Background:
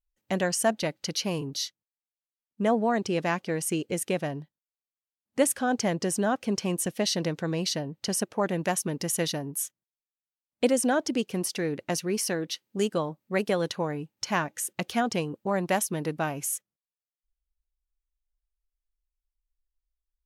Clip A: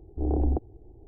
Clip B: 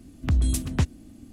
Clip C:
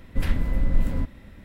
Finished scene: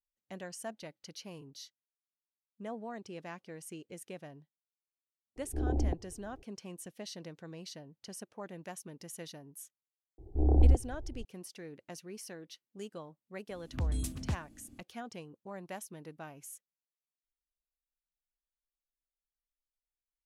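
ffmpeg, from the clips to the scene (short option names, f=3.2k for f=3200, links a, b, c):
-filter_complex "[1:a]asplit=2[a][b];[0:a]volume=-17.5dB[c];[b]asubboost=boost=10:cutoff=110[d];[2:a]volume=16dB,asoftclip=hard,volume=-16dB[e];[a]atrim=end=1.07,asetpts=PTS-STARTPTS,volume=-6dB,afade=t=in:d=0.004:c=hsin,afade=t=out:st=1.066:d=0.004:c=hsin,adelay=5360[f];[d]atrim=end=1.07,asetpts=PTS-STARTPTS,volume=-2.5dB,afade=t=in:d=0.004:c=hsin,afade=t=out:st=1.066:d=0.004:c=hsin,adelay=448938S[g];[e]atrim=end=1.32,asetpts=PTS-STARTPTS,volume=-10.5dB,afade=t=in:d=0.004:c=hsin,afade=t=out:st=1.316:d=0.004:c=hsin,adelay=13500[h];[c][f][g][h]amix=inputs=4:normalize=0"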